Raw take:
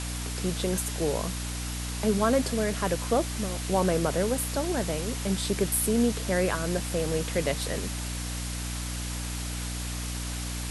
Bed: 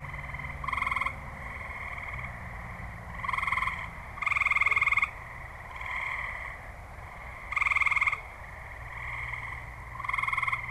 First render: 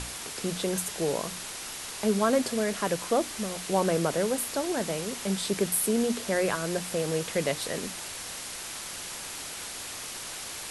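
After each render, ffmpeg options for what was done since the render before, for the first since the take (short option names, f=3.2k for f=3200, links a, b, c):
-af "bandreject=f=60:t=h:w=6,bandreject=f=120:t=h:w=6,bandreject=f=180:t=h:w=6,bandreject=f=240:t=h:w=6,bandreject=f=300:t=h:w=6"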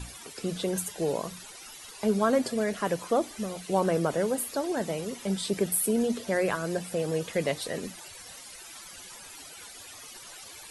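-af "afftdn=nr=15:nf=-39"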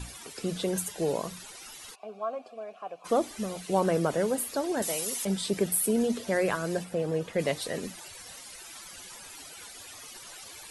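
-filter_complex "[0:a]asplit=3[a][b][c];[a]afade=t=out:st=1.94:d=0.02[d];[b]asplit=3[e][f][g];[e]bandpass=f=730:t=q:w=8,volume=0dB[h];[f]bandpass=f=1.09k:t=q:w=8,volume=-6dB[i];[g]bandpass=f=2.44k:t=q:w=8,volume=-9dB[j];[h][i][j]amix=inputs=3:normalize=0,afade=t=in:st=1.94:d=0.02,afade=t=out:st=3.04:d=0.02[k];[c]afade=t=in:st=3.04:d=0.02[l];[d][k][l]amix=inputs=3:normalize=0,asettb=1/sr,asplit=3[m][n][o];[m]atrim=end=4.824[p];[n]atrim=start=4.82:end=5.25,asetpts=PTS-STARTPTS,afade=t=in:d=0.004:c=qsin,afade=t=out:st=0.426:d=0.004:c=qsin,aemphasis=mode=production:type=riaa[q];[o]atrim=start=5.246[r];[p][q]acrossfade=d=0.004:c1=hsin:c2=qsin[s];[s][r]acrossfade=d=0.004:c1=qsin:c2=hsin,asplit=3[t][u][v];[t]afade=t=out:st=6.83:d=0.02[w];[u]highshelf=f=3k:g=-10.5,afade=t=in:st=6.83:d=0.02,afade=t=out:st=7.38:d=0.02[x];[v]afade=t=in:st=7.38:d=0.02[y];[w][x][y]amix=inputs=3:normalize=0"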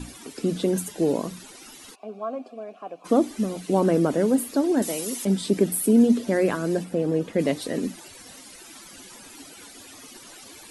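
-af "equalizer=f=270:w=1.4:g=14"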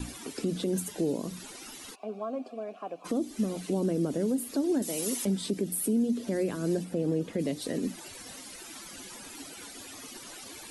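-filter_complex "[0:a]acrossover=split=470|3000[a][b][c];[b]acompressor=threshold=-36dB:ratio=6[d];[a][d][c]amix=inputs=3:normalize=0,alimiter=limit=-20dB:level=0:latency=1:release=307"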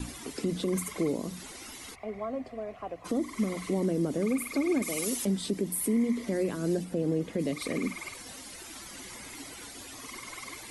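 -filter_complex "[1:a]volume=-16.5dB[a];[0:a][a]amix=inputs=2:normalize=0"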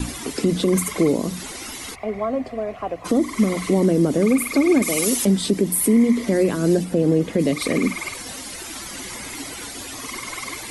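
-af "volume=11dB"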